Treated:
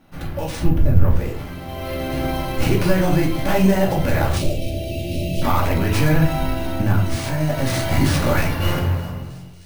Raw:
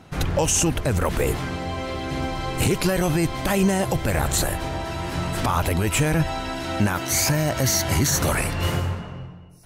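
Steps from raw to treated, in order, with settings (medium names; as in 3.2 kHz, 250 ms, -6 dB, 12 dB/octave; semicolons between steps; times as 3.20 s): tracing distortion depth 0.32 ms; 0.59–1.16 s: RIAA curve playback; 4.36–5.42 s: elliptic band-stop 630–2500 Hz, stop band 40 dB; 6.37–7.16 s: bass shelf 270 Hz +10.5 dB; level rider gain up to 10 dB; feedback echo behind a high-pass 311 ms, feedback 83%, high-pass 3.3 kHz, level -22 dB; reverberation RT60 0.45 s, pre-delay 3 ms, DRR -2.5 dB; careless resampling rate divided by 3×, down filtered, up hold; trim -10 dB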